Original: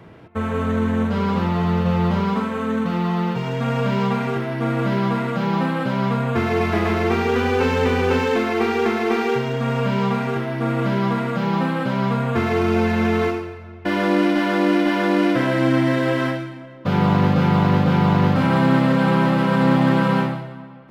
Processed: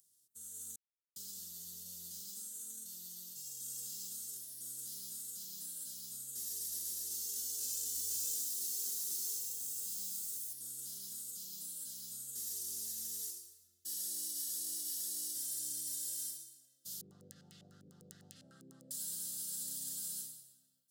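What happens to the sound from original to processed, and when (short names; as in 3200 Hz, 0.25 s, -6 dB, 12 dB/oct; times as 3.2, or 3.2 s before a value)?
0.76–1.16 mute
7.82–10.53 lo-fi delay 0.126 s, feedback 35%, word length 8-bit, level -6.5 dB
11.23–11.81 Butterworth band-stop 1800 Hz, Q 3.2
17.01–18.91 stepped low-pass 10 Hz 390–2300 Hz
whole clip: inverse Chebyshev high-pass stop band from 2500 Hz, stop band 60 dB; AGC gain up to 5 dB; gain +10 dB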